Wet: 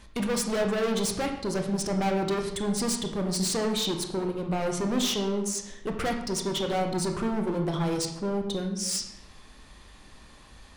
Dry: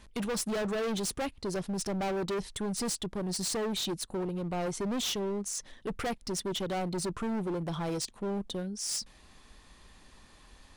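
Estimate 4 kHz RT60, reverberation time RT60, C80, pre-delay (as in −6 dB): 0.65 s, 0.85 s, 8.5 dB, 21 ms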